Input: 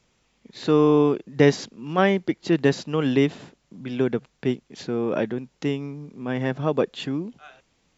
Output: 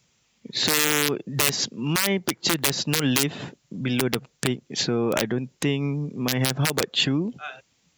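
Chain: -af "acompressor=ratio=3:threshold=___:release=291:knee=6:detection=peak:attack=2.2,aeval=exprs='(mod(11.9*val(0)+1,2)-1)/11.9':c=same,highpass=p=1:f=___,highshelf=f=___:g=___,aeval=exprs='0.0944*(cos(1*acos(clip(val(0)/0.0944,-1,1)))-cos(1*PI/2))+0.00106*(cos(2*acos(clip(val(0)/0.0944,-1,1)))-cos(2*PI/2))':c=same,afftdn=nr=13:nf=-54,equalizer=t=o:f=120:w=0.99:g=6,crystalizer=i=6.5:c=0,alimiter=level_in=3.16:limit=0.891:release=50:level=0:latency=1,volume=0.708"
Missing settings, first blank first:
0.0398, 67, 3900, -6.5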